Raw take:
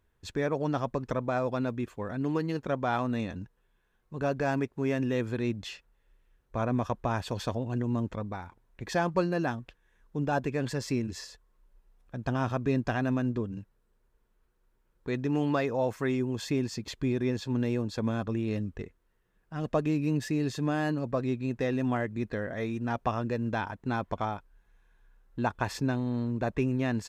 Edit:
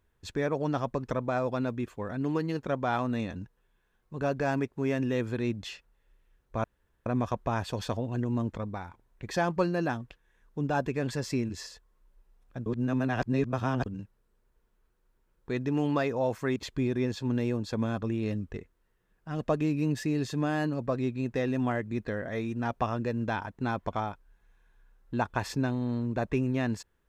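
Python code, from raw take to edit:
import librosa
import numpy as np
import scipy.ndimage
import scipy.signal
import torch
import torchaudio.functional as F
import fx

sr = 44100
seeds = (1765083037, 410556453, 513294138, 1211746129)

y = fx.edit(x, sr, fx.insert_room_tone(at_s=6.64, length_s=0.42),
    fx.reverse_span(start_s=12.24, length_s=1.2),
    fx.cut(start_s=16.14, length_s=0.67), tone=tone)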